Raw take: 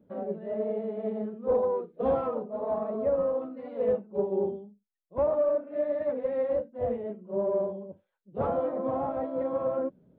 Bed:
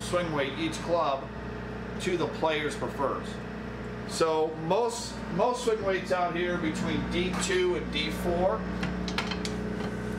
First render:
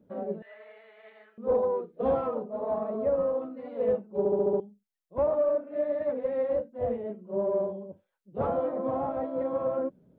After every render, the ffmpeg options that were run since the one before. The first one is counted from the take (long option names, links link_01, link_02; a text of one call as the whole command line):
ffmpeg -i in.wav -filter_complex "[0:a]asettb=1/sr,asplit=3[link_01][link_02][link_03];[link_01]atrim=end=0.424[link_04];[link_02]atrim=start=0.42:end=1.38,asetpts=PTS-STARTPTS,afade=type=in:duration=0.004:curve=qsin,afade=type=out:start_time=0.956:duration=0.004:curve=qsin,highpass=frequency=1800:width_type=q:width=2.2[link_05];[link_03]atrim=start=1.376[link_06];[link_04][link_05]acrossfade=duration=0.004:curve1=hsin:curve2=qsin[link_07];[link_07][link_06]acrossfade=duration=0.004:curve1=qsin:curve2=hsin,asplit=7[link_08][link_09][link_10][link_11][link_12][link_13][link_14];[link_08]atrim=end=4.252[link_15];[link_09]atrim=start=4.178:end=4.252[link_16];[link_10]atrim=start=4.178:end=4.252[link_17];[link_11]atrim=start=4.178:end=4.252[link_18];[link_12]atrim=start=4.178:end=4.252[link_19];[link_13]atrim=start=4.178:end=4.252[link_20];[link_14]atrim=start=4.598[link_21];[link_15][link_16]acrossfade=duration=0.004:curve1=hsin:curve2=hsin[link_22];[link_22][link_17]acrossfade=duration=0.004:curve1=hsin:curve2=hsin[link_23];[link_23][link_18]acrossfade=duration=0.004:curve1=hsin:curve2=hsin[link_24];[link_24][link_19]acrossfade=duration=0.004:curve1=hsin:curve2=hsin[link_25];[link_25][link_20]acrossfade=duration=0.004:curve1=hsin:curve2=hsin[link_26];[link_26][link_21]acrossfade=duration=0.004:curve1=hsin:curve2=hsin" out.wav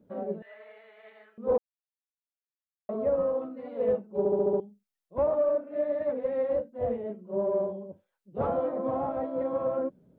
ffmpeg -i in.wav -filter_complex "[0:a]asplit=3[link_01][link_02][link_03];[link_01]atrim=end=1.58,asetpts=PTS-STARTPTS,afade=type=out:start_time=1.576:duration=0.004:curve=hsin[link_04];[link_02]atrim=start=1.58:end=2.89,asetpts=PTS-STARTPTS,volume=0[link_05];[link_03]atrim=start=2.89,asetpts=PTS-STARTPTS,afade=type=in:duration=0.004:curve=hsin[link_06];[link_04][link_05][link_06]concat=n=3:v=0:a=1" out.wav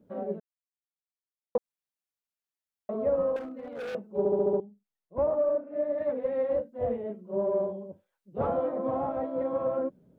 ffmpeg -i in.wav -filter_complex "[0:a]asettb=1/sr,asplit=3[link_01][link_02][link_03];[link_01]atrim=end=3.364[link_04];[link_02]atrim=start=3.36:end=3.95,asetpts=PTS-STARTPTS,afade=type=in:duration=0.004:curve=qsin,afade=type=out:start_time=0.586:duration=0.004:curve=qsin,asoftclip=type=hard:threshold=-34.5dB[link_05];[link_03]atrim=start=3.946[link_06];[link_04][link_05]acrossfade=duration=0.004:curve1=hsin:curve2=qsin[link_07];[link_07][link_06]acrossfade=duration=0.004:curve1=qsin:curve2=hsin,asettb=1/sr,asplit=3[link_08][link_09][link_10];[link_08]atrim=end=4.574[link_11];[link_09]atrim=start=4.57:end=5.98,asetpts=PTS-STARTPTS,afade=type=in:duration=0.004:curve=qsin,afade=type=out:start_time=1.406:duration=0.004:curve=qsin,highshelf=frequency=2200:gain=-10.5[link_12];[link_10]atrim=start=5.976[link_13];[link_11][link_12]acrossfade=duration=0.004:curve1=hsin:curve2=qsin[link_14];[link_14][link_13]acrossfade=duration=0.004:curve1=qsin:curve2=hsin,asplit=3[link_15][link_16][link_17];[link_15]atrim=end=0.4,asetpts=PTS-STARTPTS,afade=type=out:start_time=0.396:duration=0.004:curve=hsin[link_18];[link_16]atrim=start=0.4:end=1.55,asetpts=PTS-STARTPTS,volume=0[link_19];[link_17]atrim=start=1.55,asetpts=PTS-STARTPTS,afade=type=in:duration=0.004:curve=hsin[link_20];[link_18][link_19][link_20]concat=n=3:v=0:a=1" out.wav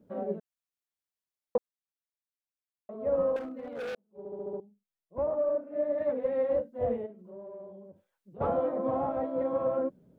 ffmpeg -i in.wav -filter_complex "[0:a]asplit=3[link_01][link_02][link_03];[link_01]afade=type=out:start_time=7.05:duration=0.02[link_04];[link_02]acompressor=threshold=-48dB:ratio=3:attack=3.2:release=140:knee=1:detection=peak,afade=type=in:start_time=7.05:duration=0.02,afade=type=out:start_time=8.4:duration=0.02[link_05];[link_03]afade=type=in:start_time=8.4:duration=0.02[link_06];[link_04][link_05][link_06]amix=inputs=3:normalize=0,asplit=4[link_07][link_08][link_09][link_10];[link_07]atrim=end=1.73,asetpts=PTS-STARTPTS,afade=type=out:start_time=1.56:duration=0.17:silence=0.334965[link_11];[link_08]atrim=start=1.73:end=2.99,asetpts=PTS-STARTPTS,volume=-9.5dB[link_12];[link_09]atrim=start=2.99:end=3.95,asetpts=PTS-STARTPTS,afade=type=in:duration=0.17:silence=0.334965,afade=type=out:start_time=0.956:duration=0.004:curve=hsin[link_13];[link_10]atrim=start=3.95,asetpts=PTS-STARTPTS,afade=type=in:duration=1.97[link_14];[link_11][link_12][link_13][link_14]concat=n=4:v=0:a=1" out.wav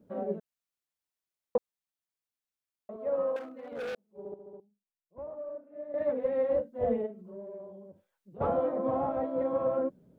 ffmpeg -i in.wav -filter_complex "[0:a]asettb=1/sr,asplit=3[link_01][link_02][link_03];[link_01]atrim=end=2.964[link_04];[link_02]atrim=start=2.96:end=3.72,asetpts=PTS-STARTPTS,afade=type=in:duration=0.004:curve=qsin,afade=type=out:start_time=0.756:duration=0.004:curve=qsin,highpass=frequency=490:poles=1[link_05];[link_03]atrim=start=3.716[link_06];[link_04][link_05]acrossfade=duration=0.004:curve1=hsin:curve2=qsin[link_07];[link_07][link_06]acrossfade=duration=0.004:curve1=qsin:curve2=hsin,asettb=1/sr,asplit=3[link_08][link_09][link_10];[link_08]atrim=end=6.834[link_11];[link_09]atrim=start=6.83:end=7.6,asetpts=PTS-STARTPTS,afade=type=in:duration=0.004:curve=qsin,afade=type=out:start_time=0.766:duration=0.004:curve=qsin,aecho=1:1:4.6:0.6,atrim=end_sample=33957[link_12];[link_10]atrim=start=7.596[link_13];[link_11][link_12]acrossfade=duration=0.004:curve1=hsin:curve2=qsin[link_14];[link_14][link_13]acrossfade=duration=0.004:curve1=qsin:curve2=hsin,asplit=3[link_15][link_16][link_17];[link_15]atrim=end=4.342[link_18];[link_16]atrim=start=4.338:end=5.942,asetpts=PTS-STARTPTS,volume=-11.5dB[link_19];[link_17]atrim=start=5.938[link_20];[link_18][link_19]acrossfade=duration=0.004:curve1=hsin:curve2=hsin[link_21];[link_21][link_20]acrossfade=duration=0.004:curve1=hsin:curve2=hsin" out.wav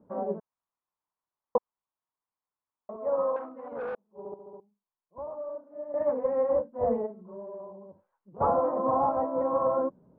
ffmpeg -i in.wav -af "lowpass=1300,equalizer=frequency=1000:width_type=o:width=0.75:gain=13.5" out.wav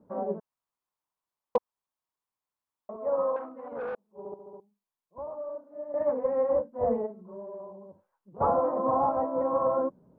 ffmpeg -i in.wav -af "asoftclip=type=hard:threshold=-15dB" out.wav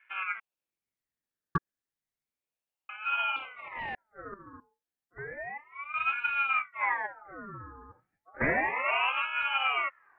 ffmpeg -i in.wav -af "aeval=exprs='val(0)*sin(2*PI*1300*n/s+1300*0.5/0.32*sin(2*PI*0.32*n/s))':channel_layout=same" out.wav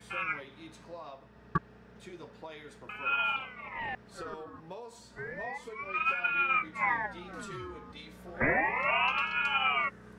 ffmpeg -i in.wav -i bed.wav -filter_complex "[1:a]volume=-18.5dB[link_01];[0:a][link_01]amix=inputs=2:normalize=0" out.wav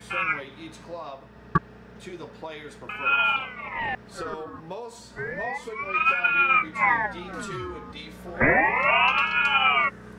ffmpeg -i in.wav -af "volume=8dB" out.wav